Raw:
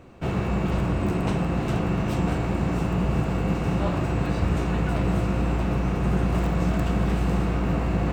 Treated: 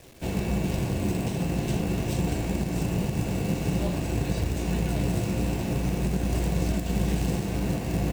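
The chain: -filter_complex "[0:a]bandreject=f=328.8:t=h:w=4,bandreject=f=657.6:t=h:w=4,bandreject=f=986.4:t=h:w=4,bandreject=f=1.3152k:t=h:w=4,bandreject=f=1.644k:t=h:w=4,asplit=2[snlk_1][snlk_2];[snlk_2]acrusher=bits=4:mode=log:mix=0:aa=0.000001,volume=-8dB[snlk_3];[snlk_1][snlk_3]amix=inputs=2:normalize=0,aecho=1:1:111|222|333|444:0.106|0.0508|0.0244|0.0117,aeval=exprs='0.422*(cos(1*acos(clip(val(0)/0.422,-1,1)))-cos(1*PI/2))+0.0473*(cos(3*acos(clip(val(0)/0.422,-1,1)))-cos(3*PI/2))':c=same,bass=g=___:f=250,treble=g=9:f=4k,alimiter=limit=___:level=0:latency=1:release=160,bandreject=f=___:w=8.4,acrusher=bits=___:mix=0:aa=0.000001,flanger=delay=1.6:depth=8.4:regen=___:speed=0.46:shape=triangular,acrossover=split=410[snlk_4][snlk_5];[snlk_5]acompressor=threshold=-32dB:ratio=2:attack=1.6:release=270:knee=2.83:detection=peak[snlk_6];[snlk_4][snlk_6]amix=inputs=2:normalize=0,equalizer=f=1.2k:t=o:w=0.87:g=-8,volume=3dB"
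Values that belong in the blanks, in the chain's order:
-1, -12dB, 1.3k, 7, -65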